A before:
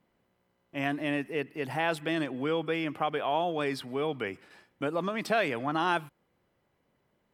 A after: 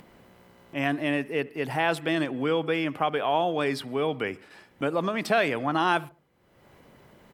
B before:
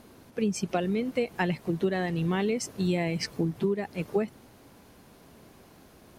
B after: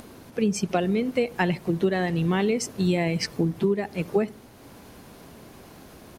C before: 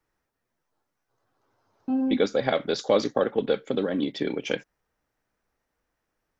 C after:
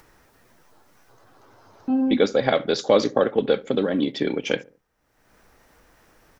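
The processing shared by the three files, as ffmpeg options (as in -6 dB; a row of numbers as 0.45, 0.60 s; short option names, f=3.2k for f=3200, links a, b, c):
-filter_complex "[0:a]acompressor=mode=upward:threshold=-44dB:ratio=2.5,asplit=2[a][b];[b]adelay=71,lowpass=f=960:p=1,volume=-19dB,asplit=2[c][d];[d]adelay=71,lowpass=f=960:p=1,volume=0.4,asplit=2[e][f];[f]adelay=71,lowpass=f=960:p=1,volume=0.4[g];[c][e][g]amix=inputs=3:normalize=0[h];[a][h]amix=inputs=2:normalize=0,volume=4dB"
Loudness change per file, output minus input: +4.0, +4.0, +4.0 LU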